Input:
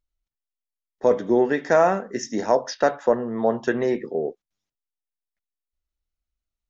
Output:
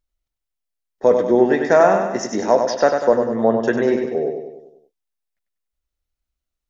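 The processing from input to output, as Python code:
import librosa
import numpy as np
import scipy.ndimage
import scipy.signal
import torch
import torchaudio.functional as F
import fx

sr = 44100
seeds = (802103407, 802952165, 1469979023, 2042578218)

y = fx.peak_eq(x, sr, hz=560.0, db=2.0, octaves=0.77)
y = fx.echo_feedback(y, sr, ms=97, feedback_pct=52, wet_db=-6)
y = y * 10.0 ** (2.5 / 20.0)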